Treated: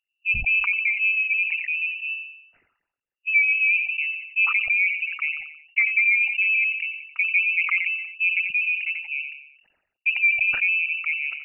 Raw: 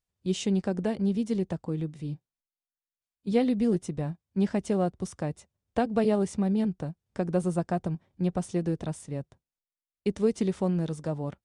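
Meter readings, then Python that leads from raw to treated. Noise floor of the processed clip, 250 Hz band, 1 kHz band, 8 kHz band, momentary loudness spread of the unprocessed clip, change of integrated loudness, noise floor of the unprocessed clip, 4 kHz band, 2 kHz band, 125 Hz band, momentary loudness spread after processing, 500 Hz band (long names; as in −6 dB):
−83 dBFS, below −30 dB, −6.5 dB, below −30 dB, 11 LU, +9.0 dB, below −85 dBFS, +9.0 dB, +29.0 dB, below −15 dB, 10 LU, below −30 dB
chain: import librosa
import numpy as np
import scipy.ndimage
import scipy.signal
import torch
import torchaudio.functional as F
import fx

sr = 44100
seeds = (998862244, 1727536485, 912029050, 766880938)

y = fx.envelope_sharpen(x, sr, power=3.0)
y = scipy.signal.sosfilt(scipy.signal.butter(2, 50.0, 'highpass', fs=sr, output='sos'), y)
y = fx.peak_eq(y, sr, hz=1200.0, db=5.0, octaves=1.0)
y = fx.notch(y, sr, hz=1700.0, q=14.0)
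y = fx.freq_invert(y, sr, carrier_hz=2800)
y = fx.echo_feedback(y, sr, ms=89, feedback_pct=51, wet_db=-18)
y = fx.sustainer(y, sr, db_per_s=75.0)
y = y * librosa.db_to_amplitude(4.0)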